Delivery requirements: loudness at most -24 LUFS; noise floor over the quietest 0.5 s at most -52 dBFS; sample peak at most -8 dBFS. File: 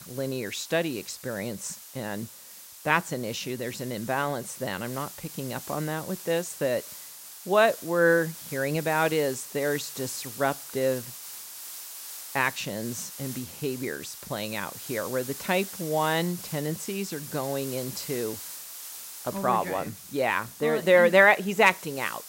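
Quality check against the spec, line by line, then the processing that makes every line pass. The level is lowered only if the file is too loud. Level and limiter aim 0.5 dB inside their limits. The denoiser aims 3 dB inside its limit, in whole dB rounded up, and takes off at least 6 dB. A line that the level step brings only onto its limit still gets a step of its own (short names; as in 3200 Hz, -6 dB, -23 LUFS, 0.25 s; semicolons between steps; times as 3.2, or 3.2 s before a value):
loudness -27.5 LUFS: OK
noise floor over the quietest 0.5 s -47 dBFS: fail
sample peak -5.0 dBFS: fail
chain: denoiser 8 dB, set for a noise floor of -47 dBFS; limiter -8.5 dBFS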